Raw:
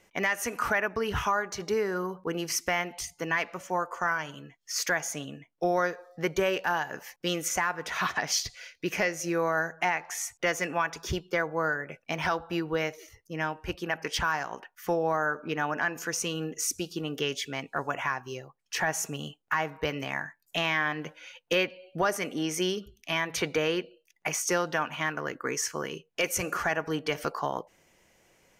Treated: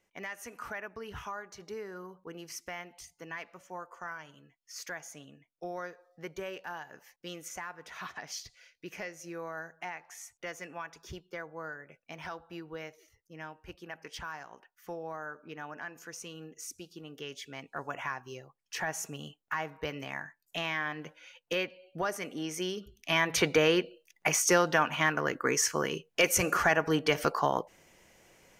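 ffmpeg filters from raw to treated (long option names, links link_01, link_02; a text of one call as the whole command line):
ffmpeg -i in.wav -af "volume=3dB,afade=type=in:start_time=17.16:duration=0.86:silence=0.446684,afade=type=in:start_time=22.72:duration=0.55:silence=0.354813" out.wav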